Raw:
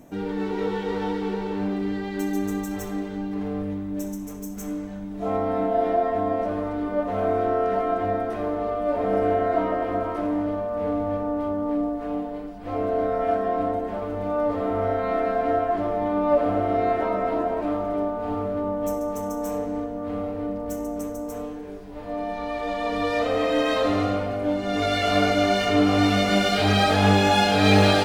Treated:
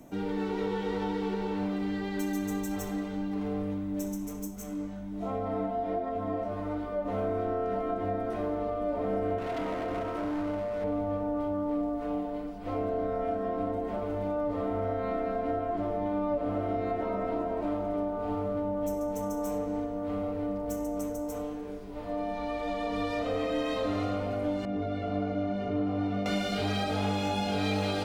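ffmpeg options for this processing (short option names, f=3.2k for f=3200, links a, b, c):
-filter_complex "[0:a]asplit=3[a][b][c];[a]afade=t=out:st=4.46:d=0.02[d];[b]flanger=delay=18.5:depth=3.2:speed=1.3,afade=t=in:st=4.46:d=0.02,afade=t=out:st=7.04:d=0.02[e];[c]afade=t=in:st=7.04:d=0.02[f];[d][e][f]amix=inputs=3:normalize=0,asettb=1/sr,asplit=3[g][h][i];[g]atrim=end=9.384[j];[h]atrim=start=9.38:end=10.84,asetpts=PTS-STARTPTS,afade=t=in:d=0.004:c=qsin,afade=t=out:st=1.456:d=0.004:c=qsin,volume=25.5dB,asoftclip=hard,volume=-25.5dB[k];[i]atrim=start=10.836[l];[j][k]acrossfade=d=0.004:c1=hsin:c2=qsin[m];[m][l]acrossfade=d=0.004:c1=qsin:c2=hsin,asettb=1/sr,asplit=3[n][o][p];[n]atrim=end=24.654[q];[o]atrim=start=24.65:end=26.26,asetpts=PTS-STARTPTS,afade=t=in:d=0.004:c=qsin,afade=t=out:st=1.606:d=0.004:c=qsin,bandpass=f=160:t=q:w=0.56[r];[p]atrim=start=26.256[s];[q][r]acrossfade=d=0.004:c1=hsin:c2=qsin[t];[t][s]acrossfade=d=0.004:c1=qsin:c2=hsin,bandreject=f=1.7k:w=12,bandreject=f=78.86:t=h:w=4,bandreject=f=157.72:t=h:w=4,bandreject=f=236.58:t=h:w=4,bandreject=f=315.44:t=h:w=4,bandreject=f=394.3:t=h:w=4,bandreject=f=473.16:t=h:w=4,bandreject=f=552.02:t=h:w=4,bandreject=f=630.88:t=h:w=4,bandreject=f=709.74:t=h:w=4,bandreject=f=788.6:t=h:w=4,bandreject=f=867.46:t=h:w=4,bandreject=f=946.32:t=h:w=4,bandreject=f=1.02518k:t=h:w=4,bandreject=f=1.10404k:t=h:w=4,bandreject=f=1.1829k:t=h:w=4,bandreject=f=1.26176k:t=h:w=4,bandreject=f=1.34062k:t=h:w=4,bandreject=f=1.41948k:t=h:w=4,bandreject=f=1.49834k:t=h:w=4,bandreject=f=1.5772k:t=h:w=4,bandreject=f=1.65606k:t=h:w=4,bandreject=f=1.73492k:t=h:w=4,bandreject=f=1.81378k:t=h:w=4,bandreject=f=1.89264k:t=h:w=4,bandreject=f=1.9715k:t=h:w=4,bandreject=f=2.05036k:t=h:w=4,bandreject=f=2.12922k:t=h:w=4,bandreject=f=2.20808k:t=h:w=4,bandreject=f=2.28694k:t=h:w=4,bandreject=f=2.3658k:t=h:w=4,bandreject=f=2.44466k:t=h:w=4,bandreject=f=2.52352k:t=h:w=4,bandreject=f=2.60238k:t=h:w=4,bandreject=f=2.68124k:t=h:w=4,bandreject=f=2.7601k:t=h:w=4,bandreject=f=2.83896k:t=h:w=4,acrossover=split=220|470[u][v][w];[u]acompressor=threshold=-33dB:ratio=4[x];[v]acompressor=threshold=-33dB:ratio=4[y];[w]acompressor=threshold=-32dB:ratio=4[z];[x][y][z]amix=inputs=3:normalize=0,volume=-2dB"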